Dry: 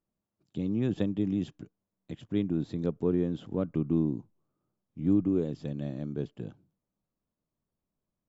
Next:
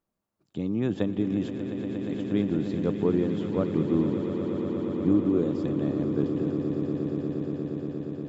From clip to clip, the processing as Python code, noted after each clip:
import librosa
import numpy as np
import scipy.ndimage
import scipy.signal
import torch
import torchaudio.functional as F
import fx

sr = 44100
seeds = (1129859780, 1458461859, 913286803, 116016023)

y = fx.curve_eq(x, sr, hz=(140.0, 1200.0, 3000.0), db=(0, 7, 2))
y = fx.echo_swell(y, sr, ms=118, loudest=8, wet_db=-12)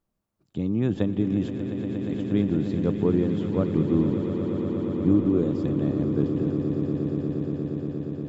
y = fx.low_shelf(x, sr, hz=130.0, db=10.5)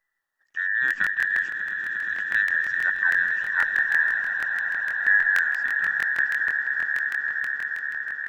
y = fx.band_invert(x, sr, width_hz=2000)
y = fx.buffer_crackle(y, sr, first_s=0.86, period_s=0.16, block=1024, kind='repeat')